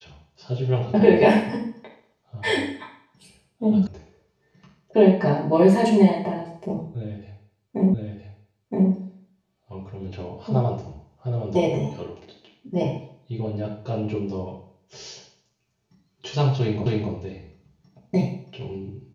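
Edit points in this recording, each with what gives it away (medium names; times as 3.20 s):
3.87 s: sound stops dead
7.94 s: repeat of the last 0.97 s
16.86 s: repeat of the last 0.26 s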